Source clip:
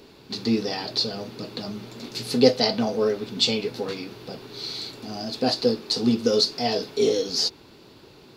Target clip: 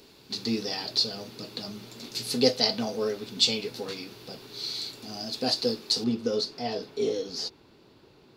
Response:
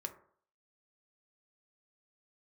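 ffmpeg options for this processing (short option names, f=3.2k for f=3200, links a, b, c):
-af "asetnsamples=n=441:p=0,asendcmd='6.04 highshelf g -5',highshelf=f=3.3k:g=9.5,volume=-6.5dB"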